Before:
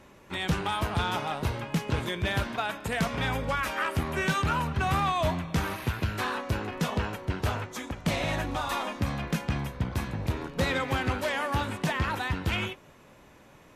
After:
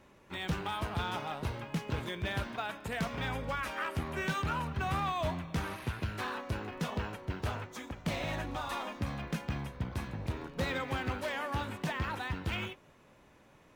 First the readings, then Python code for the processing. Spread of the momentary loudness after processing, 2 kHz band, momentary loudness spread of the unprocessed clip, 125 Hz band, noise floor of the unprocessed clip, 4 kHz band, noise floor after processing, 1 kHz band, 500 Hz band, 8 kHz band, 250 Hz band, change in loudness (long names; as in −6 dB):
5 LU, −6.5 dB, 5 LU, −6.5 dB, −55 dBFS, −7.0 dB, −61 dBFS, −6.5 dB, −6.5 dB, −8.5 dB, −6.5 dB, −6.5 dB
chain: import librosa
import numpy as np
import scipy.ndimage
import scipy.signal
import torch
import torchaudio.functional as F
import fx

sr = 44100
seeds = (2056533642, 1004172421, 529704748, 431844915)

y = np.interp(np.arange(len(x)), np.arange(len(x))[::2], x[::2])
y = F.gain(torch.from_numpy(y), -6.5).numpy()